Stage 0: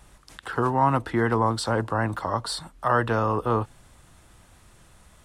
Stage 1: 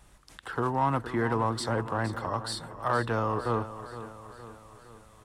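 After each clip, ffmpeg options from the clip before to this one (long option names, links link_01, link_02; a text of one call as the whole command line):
ffmpeg -i in.wav -filter_complex "[0:a]asplit=2[link_01][link_02];[link_02]volume=19dB,asoftclip=hard,volume=-19dB,volume=-8dB[link_03];[link_01][link_03]amix=inputs=2:normalize=0,aecho=1:1:464|928|1392|1856|2320:0.224|0.119|0.0629|0.0333|0.0177,volume=-7.5dB" out.wav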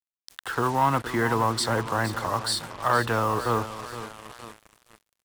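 ffmpeg -i in.wav -af "tiltshelf=frequency=1200:gain=-3.5,acrusher=bits=6:mix=0:aa=0.5,volume=5.5dB" out.wav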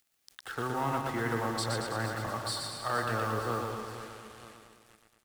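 ffmpeg -i in.wav -filter_complex "[0:a]bandreject=frequency=1000:width=7.2,acompressor=mode=upward:threshold=-44dB:ratio=2.5,asplit=2[link_01][link_02];[link_02]aecho=0:1:120|228|325.2|412.7|491.4:0.631|0.398|0.251|0.158|0.1[link_03];[link_01][link_03]amix=inputs=2:normalize=0,volume=-9dB" out.wav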